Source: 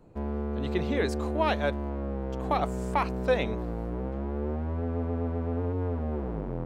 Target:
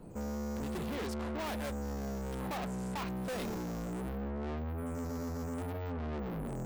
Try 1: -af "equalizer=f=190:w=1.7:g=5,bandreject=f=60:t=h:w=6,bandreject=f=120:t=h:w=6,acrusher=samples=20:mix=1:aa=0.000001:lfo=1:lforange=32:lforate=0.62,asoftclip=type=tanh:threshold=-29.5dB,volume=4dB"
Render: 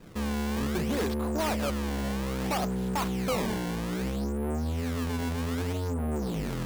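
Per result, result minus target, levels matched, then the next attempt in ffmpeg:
decimation with a swept rate: distortion +14 dB; soft clip: distortion -5 dB
-af "equalizer=f=190:w=1.7:g=5,bandreject=f=60:t=h:w=6,bandreject=f=120:t=h:w=6,acrusher=samples=4:mix=1:aa=0.000001:lfo=1:lforange=6.4:lforate=0.62,asoftclip=type=tanh:threshold=-29.5dB,volume=4dB"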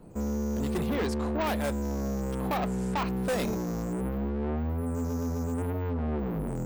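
soft clip: distortion -5 dB
-af "equalizer=f=190:w=1.7:g=5,bandreject=f=60:t=h:w=6,bandreject=f=120:t=h:w=6,acrusher=samples=4:mix=1:aa=0.000001:lfo=1:lforange=6.4:lforate=0.62,asoftclip=type=tanh:threshold=-40dB,volume=4dB"

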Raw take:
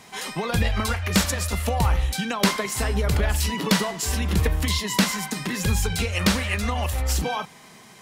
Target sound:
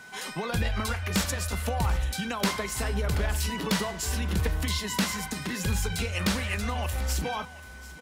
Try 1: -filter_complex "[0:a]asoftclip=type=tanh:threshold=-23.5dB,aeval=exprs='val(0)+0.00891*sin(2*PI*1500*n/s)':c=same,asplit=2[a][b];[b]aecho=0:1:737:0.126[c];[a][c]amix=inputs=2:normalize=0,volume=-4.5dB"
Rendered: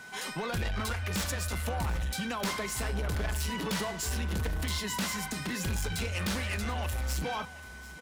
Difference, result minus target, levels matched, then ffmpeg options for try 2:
soft clip: distortion +12 dB
-filter_complex "[0:a]asoftclip=type=tanh:threshold=-12dB,aeval=exprs='val(0)+0.00891*sin(2*PI*1500*n/s)':c=same,asplit=2[a][b];[b]aecho=0:1:737:0.126[c];[a][c]amix=inputs=2:normalize=0,volume=-4.5dB"

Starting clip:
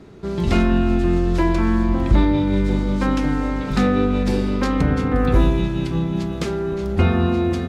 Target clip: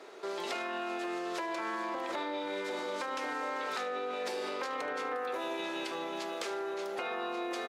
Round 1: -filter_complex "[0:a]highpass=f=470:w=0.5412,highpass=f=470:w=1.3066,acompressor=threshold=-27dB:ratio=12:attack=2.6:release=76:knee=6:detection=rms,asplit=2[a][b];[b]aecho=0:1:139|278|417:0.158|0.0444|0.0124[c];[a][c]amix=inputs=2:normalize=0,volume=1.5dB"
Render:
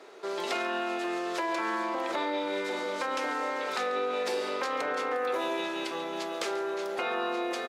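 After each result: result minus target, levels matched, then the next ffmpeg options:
echo 64 ms late; compressor: peak gain reduction -5.5 dB
-filter_complex "[0:a]highpass=f=470:w=0.5412,highpass=f=470:w=1.3066,acompressor=threshold=-27dB:ratio=12:attack=2.6:release=76:knee=6:detection=rms,asplit=2[a][b];[b]aecho=0:1:75|150|225:0.158|0.0444|0.0124[c];[a][c]amix=inputs=2:normalize=0,volume=1.5dB"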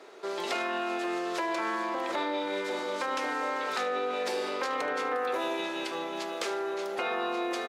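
compressor: peak gain reduction -5.5 dB
-filter_complex "[0:a]highpass=f=470:w=0.5412,highpass=f=470:w=1.3066,acompressor=threshold=-33dB:ratio=12:attack=2.6:release=76:knee=6:detection=rms,asplit=2[a][b];[b]aecho=0:1:75|150|225:0.158|0.0444|0.0124[c];[a][c]amix=inputs=2:normalize=0,volume=1.5dB"

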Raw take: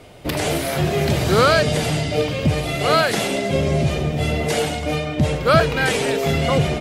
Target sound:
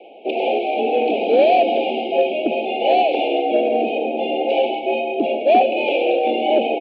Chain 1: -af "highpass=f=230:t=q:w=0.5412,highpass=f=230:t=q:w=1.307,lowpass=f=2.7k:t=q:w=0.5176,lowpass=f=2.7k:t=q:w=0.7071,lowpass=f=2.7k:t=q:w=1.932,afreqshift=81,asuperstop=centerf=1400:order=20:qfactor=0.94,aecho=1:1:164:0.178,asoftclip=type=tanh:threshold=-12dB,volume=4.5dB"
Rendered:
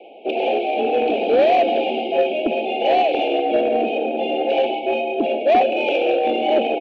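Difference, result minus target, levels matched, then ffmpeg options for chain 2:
soft clip: distortion +12 dB
-af "highpass=f=230:t=q:w=0.5412,highpass=f=230:t=q:w=1.307,lowpass=f=2.7k:t=q:w=0.5176,lowpass=f=2.7k:t=q:w=0.7071,lowpass=f=2.7k:t=q:w=1.932,afreqshift=81,asuperstop=centerf=1400:order=20:qfactor=0.94,aecho=1:1:164:0.178,asoftclip=type=tanh:threshold=-5dB,volume=4.5dB"

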